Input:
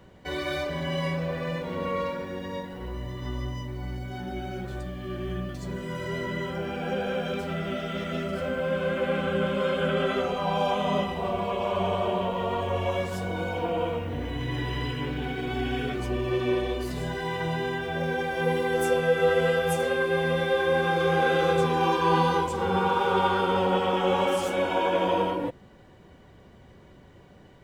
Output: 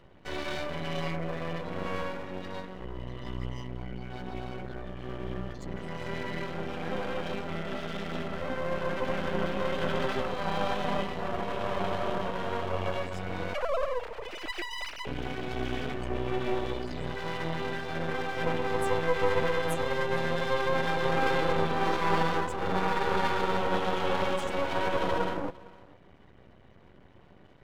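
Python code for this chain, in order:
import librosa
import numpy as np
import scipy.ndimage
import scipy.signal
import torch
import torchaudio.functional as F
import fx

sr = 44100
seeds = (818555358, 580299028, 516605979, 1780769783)

p1 = fx.sine_speech(x, sr, at=(13.54, 15.07))
p2 = fx.spec_gate(p1, sr, threshold_db=-30, keep='strong')
p3 = p2 + fx.echo_single(p2, sr, ms=457, db=-22.0, dry=0)
y = np.maximum(p3, 0.0)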